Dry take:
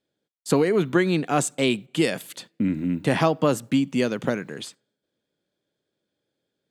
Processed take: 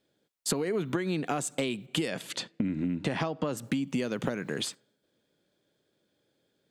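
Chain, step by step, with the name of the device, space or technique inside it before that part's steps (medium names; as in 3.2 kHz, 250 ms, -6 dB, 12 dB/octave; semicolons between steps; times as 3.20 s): 2.08–3.57 s: low-pass 6.9 kHz 12 dB/octave; serial compression, leveller first (compression 2.5:1, threshold -24 dBFS, peak gain reduction 7.5 dB; compression 5:1, threshold -33 dBFS, peak gain reduction 12.5 dB); trim +5.5 dB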